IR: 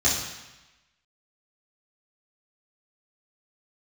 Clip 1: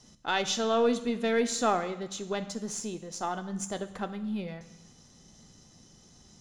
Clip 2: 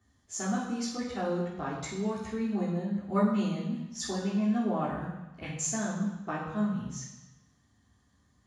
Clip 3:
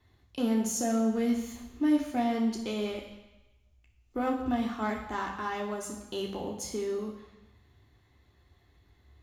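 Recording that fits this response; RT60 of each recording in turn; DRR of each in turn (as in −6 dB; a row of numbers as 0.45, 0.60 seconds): 2; 1.0, 1.0, 1.0 seconds; 9.5, −9.0, 0.0 decibels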